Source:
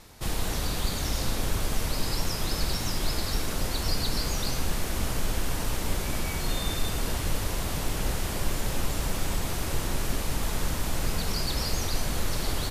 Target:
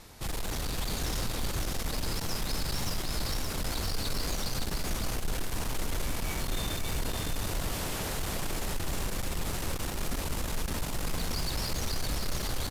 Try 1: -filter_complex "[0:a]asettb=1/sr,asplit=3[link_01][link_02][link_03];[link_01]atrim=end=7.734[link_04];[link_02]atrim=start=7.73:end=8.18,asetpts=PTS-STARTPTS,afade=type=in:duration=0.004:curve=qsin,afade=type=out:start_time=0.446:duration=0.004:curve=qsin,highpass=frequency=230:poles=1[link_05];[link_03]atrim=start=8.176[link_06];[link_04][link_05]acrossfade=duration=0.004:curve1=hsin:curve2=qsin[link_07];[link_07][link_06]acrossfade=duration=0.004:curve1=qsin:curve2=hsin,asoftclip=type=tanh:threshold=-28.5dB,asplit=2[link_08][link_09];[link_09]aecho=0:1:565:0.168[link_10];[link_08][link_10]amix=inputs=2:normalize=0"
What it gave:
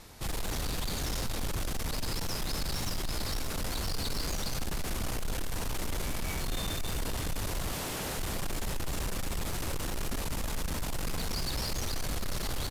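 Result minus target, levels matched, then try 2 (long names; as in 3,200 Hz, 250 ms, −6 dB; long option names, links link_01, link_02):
echo-to-direct −11 dB
-filter_complex "[0:a]asettb=1/sr,asplit=3[link_01][link_02][link_03];[link_01]atrim=end=7.734[link_04];[link_02]atrim=start=7.73:end=8.18,asetpts=PTS-STARTPTS,afade=type=in:duration=0.004:curve=qsin,afade=type=out:start_time=0.446:duration=0.004:curve=qsin,highpass=frequency=230:poles=1[link_05];[link_03]atrim=start=8.176[link_06];[link_04][link_05]acrossfade=duration=0.004:curve1=hsin:curve2=qsin[link_07];[link_07][link_06]acrossfade=duration=0.004:curve1=qsin:curve2=hsin,asoftclip=type=tanh:threshold=-28.5dB,asplit=2[link_08][link_09];[link_09]aecho=0:1:565:0.596[link_10];[link_08][link_10]amix=inputs=2:normalize=0"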